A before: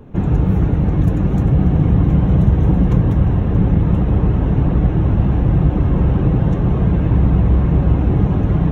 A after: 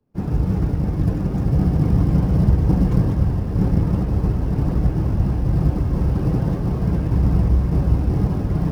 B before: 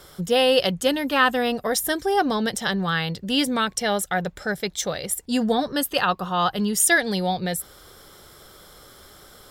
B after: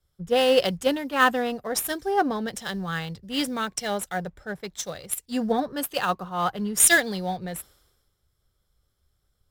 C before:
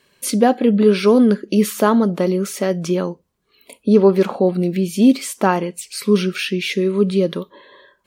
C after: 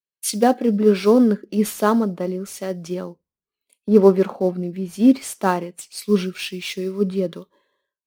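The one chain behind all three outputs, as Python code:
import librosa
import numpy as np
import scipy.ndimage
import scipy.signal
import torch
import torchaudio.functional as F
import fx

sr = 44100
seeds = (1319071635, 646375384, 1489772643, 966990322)

p1 = fx.sample_hold(x, sr, seeds[0], rate_hz=5200.0, jitter_pct=20)
p2 = x + F.gain(torch.from_numpy(p1), -11.0).numpy()
p3 = fx.band_widen(p2, sr, depth_pct=100)
y = F.gain(torch.from_numpy(p3), -6.0).numpy()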